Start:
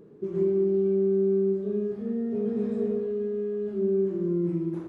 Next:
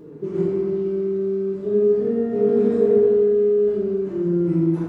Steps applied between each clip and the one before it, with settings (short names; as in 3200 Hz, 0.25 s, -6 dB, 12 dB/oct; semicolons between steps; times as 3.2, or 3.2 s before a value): FDN reverb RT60 1.3 s, low-frequency decay 0.95×, high-frequency decay 0.5×, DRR -3.5 dB; gain +5.5 dB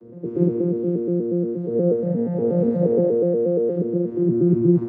arpeggiated vocoder bare fifth, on A#2, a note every 0.119 s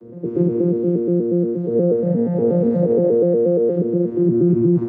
maximiser +11 dB; gain -7 dB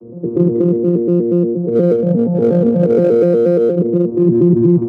Wiener smoothing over 25 samples; gain +5 dB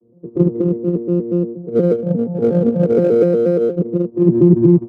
upward expander 2.5:1, over -23 dBFS; gain +2.5 dB